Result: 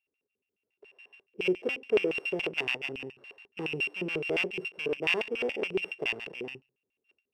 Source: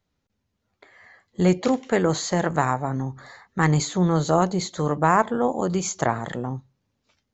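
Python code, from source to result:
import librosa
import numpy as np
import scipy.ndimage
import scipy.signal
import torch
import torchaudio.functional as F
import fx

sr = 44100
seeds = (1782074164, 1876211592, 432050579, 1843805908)

p1 = np.r_[np.sort(x[:len(x) // 16 * 16].reshape(-1, 16), axis=1).ravel(), x[len(x) // 16 * 16:]]
p2 = np.clip(p1, -10.0 ** (-20.0 / 20.0), 10.0 ** (-20.0 / 20.0))
p3 = p1 + F.gain(torch.from_numpy(p2), -4.0).numpy()
y = fx.filter_lfo_bandpass(p3, sr, shape='square', hz=7.1, low_hz=410.0, high_hz=2600.0, q=6.8)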